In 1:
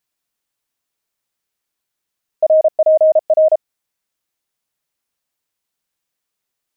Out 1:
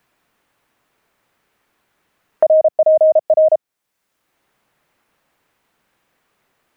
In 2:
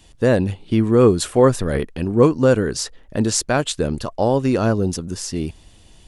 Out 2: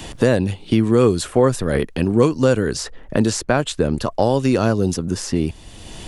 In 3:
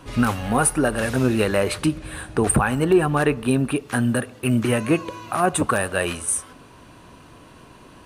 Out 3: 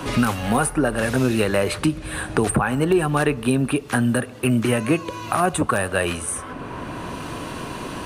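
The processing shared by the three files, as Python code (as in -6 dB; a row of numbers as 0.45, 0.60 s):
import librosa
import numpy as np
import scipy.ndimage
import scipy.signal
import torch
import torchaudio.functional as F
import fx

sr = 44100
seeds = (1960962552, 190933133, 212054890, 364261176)

y = fx.band_squash(x, sr, depth_pct=70)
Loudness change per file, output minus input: 0.0, 0.0, -0.5 LU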